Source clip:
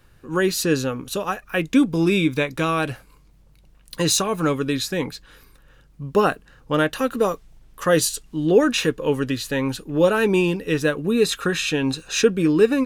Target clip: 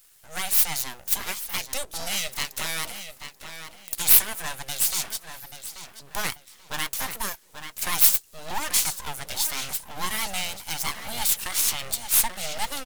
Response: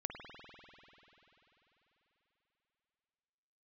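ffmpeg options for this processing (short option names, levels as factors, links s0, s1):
-filter_complex "[0:a]highshelf=f=3600:g=-9,asplit=2[s0][s1];[s1]acompressor=threshold=0.0282:ratio=6,volume=0.794[s2];[s0][s2]amix=inputs=2:normalize=0,bass=f=250:g=-12,treble=f=4000:g=11,asplit=2[s3][s4];[s4]adelay=835,lowpass=f=3200:p=1,volume=0.376,asplit=2[s5][s6];[s6]adelay=835,lowpass=f=3200:p=1,volume=0.32,asplit=2[s7][s8];[s8]adelay=835,lowpass=f=3200:p=1,volume=0.32,asplit=2[s9][s10];[s10]adelay=835,lowpass=f=3200:p=1,volume=0.32[s11];[s3][s5][s7][s9][s11]amix=inputs=5:normalize=0,aeval=exprs='abs(val(0))':c=same,crystalizer=i=7:c=0,volume=0.237"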